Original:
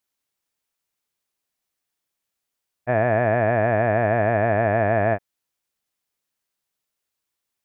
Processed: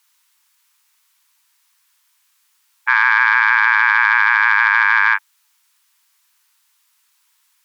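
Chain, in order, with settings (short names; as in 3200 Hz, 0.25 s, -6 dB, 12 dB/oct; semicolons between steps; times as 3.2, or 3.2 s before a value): added harmonics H 4 -26 dB, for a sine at -8 dBFS; frequency shift -92 Hz; brick-wall FIR high-pass 850 Hz; maximiser +21 dB; gain -1 dB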